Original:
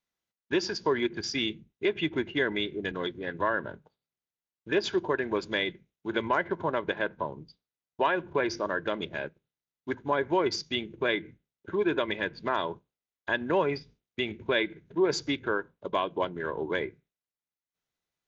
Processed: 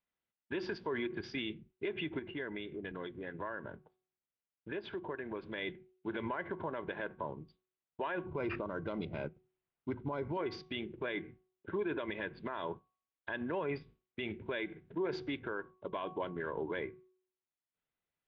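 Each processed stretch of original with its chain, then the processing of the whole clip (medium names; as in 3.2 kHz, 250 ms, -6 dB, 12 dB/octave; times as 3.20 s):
2.19–5.58 s: compression 2.5:1, threshold -37 dBFS + distance through air 110 m
8.26–10.37 s: Butterworth band-stop 1.7 kHz, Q 5.5 + tone controls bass +8 dB, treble +4 dB + decimation joined by straight lines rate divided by 6×
whole clip: low-pass 3.3 kHz 24 dB/octave; de-hum 370.7 Hz, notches 3; peak limiter -25 dBFS; trim -3 dB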